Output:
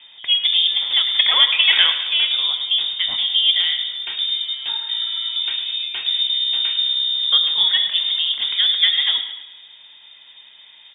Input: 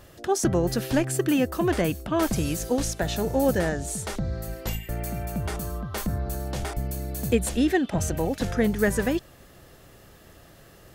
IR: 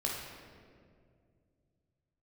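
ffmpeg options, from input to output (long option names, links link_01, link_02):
-filter_complex "[0:a]asettb=1/sr,asplit=3[link_01][link_02][link_03];[link_01]atrim=end=1.144[link_04];[link_02]atrim=start=1.14:end=1.9,asetpts=PTS-STARTPTS,afade=type=in:duration=0.004:curve=qsin,afade=type=out:start_time=0.756:duration=0.004:curve=qsin,equalizer=frequency=1500:width_type=o:width=2.4:gain=12[link_05];[link_03]atrim=start=1.896[link_06];[link_04][link_05]acrossfade=duration=0.004:curve1=hsin:curve2=qsin[link_07];[link_07][link_06]acrossfade=duration=0.004:curve1=qsin:curve2=hsin,aecho=1:1:106|212|318|424|530:0.251|0.131|0.0679|0.0353|0.0184,asplit=2[link_08][link_09];[1:a]atrim=start_sample=2205,afade=type=out:start_time=0.29:duration=0.01,atrim=end_sample=13230,lowpass=2000[link_10];[link_09][link_10]afir=irnorm=-1:irlink=0,volume=-7.5dB[link_11];[link_08][link_11]amix=inputs=2:normalize=0,lowpass=frequency=3100:width_type=q:width=0.5098,lowpass=frequency=3100:width_type=q:width=0.6013,lowpass=frequency=3100:width_type=q:width=0.9,lowpass=frequency=3100:width_type=q:width=2.563,afreqshift=-3700,volume=2dB"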